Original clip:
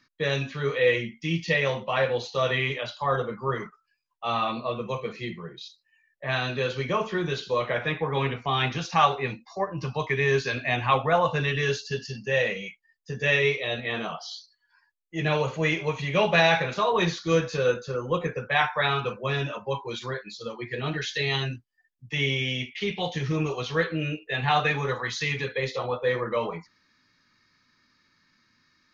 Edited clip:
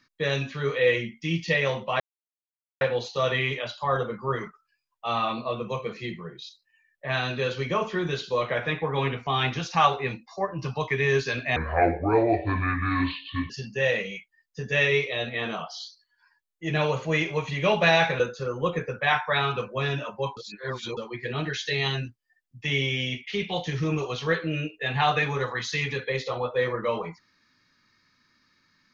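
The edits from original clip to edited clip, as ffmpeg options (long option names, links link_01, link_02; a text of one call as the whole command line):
ffmpeg -i in.wav -filter_complex "[0:a]asplit=7[link_01][link_02][link_03][link_04][link_05][link_06][link_07];[link_01]atrim=end=2,asetpts=PTS-STARTPTS,afade=type=out:start_time=1.996:duration=0.004:curve=hsin,apad=pad_dur=0.81[link_08];[link_02]atrim=start=2:end=10.754,asetpts=PTS-STARTPTS,afade=type=in:duration=0.004:curve=hsin[link_09];[link_03]atrim=start=10.75:end=12.01,asetpts=PTS-STARTPTS,asetrate=28665,aresample=44100,atrim=end_sample=85486,asetpts=PTS-STARTPTS[link_10];[link_04]atrim=start=12.006:end=16.712[link_11];[link_05]atrim=start=17.678:end=19.852[link_12];[link_06]atrim=start=19.848:end=20.452,asetpts=PTS-STARTPTS,areverse[link_13];[link_07]atrim=start=20.448[link_14];[link_08][link_09]concat=n=2:v=0:a=1[link_15];[link_15][link_10]acrossfade=duration=0.004:curve1=hsin:curve2=hsin[link_16];[link_16][link_11]acrossfade=duration=0.004:curve1=hsin:curve2=hsin[link_17];[link_17][link_12]acrossfade=duration=0.004:curve1=hsin:curve2=hsin[link_18];[link_18][link_13]acrossfade=duration=0.004:curve1=hsin:curve2=hsin[link_19];[link_19][link_14]acrossfade=duration=0.004:curve1=hsin:curve2=hsin" out.wav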